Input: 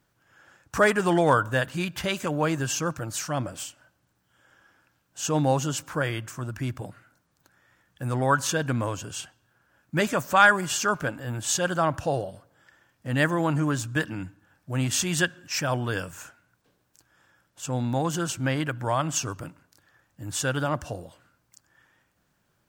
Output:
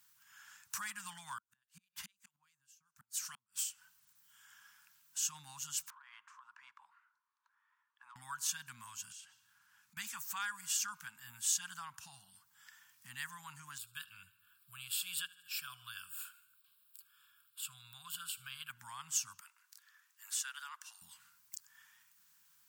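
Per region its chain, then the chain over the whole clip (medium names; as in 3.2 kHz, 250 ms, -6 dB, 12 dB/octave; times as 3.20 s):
1.38–3.59 s: harmonic tremolo 4.9 Hz, crossover 1.3 kHz + inverted gate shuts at -24 dBFS, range -40 dB
5.90–8.16 s: ladder band-pass 1.1 kHz, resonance 65% + compression 12:1, threshold -45 dBFS + transformer saturation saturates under 470 Hz
9.12–9.97 s: treble shelf 11 kHz -11.5 dB + compression 5:1, threshold -50 dBFS
13.78–18.70 s: peaking EQ 330 Hz -8 dB 2.5 oct + static phaser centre 1.3 kHz, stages 8 + feedback delay 76 ms, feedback 58%, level -23 dB
19.40–21.02 s: high-pass 1.1 kHz 24 dB/octave + tilt EQ -2 dB/octave
whole clip: compression 2:1, threshold -49 dBFS; elliptic band-stop 210–940 Hz, stop band 60 dB; tilt EQ +4.5 dB/octave; trim -5 dB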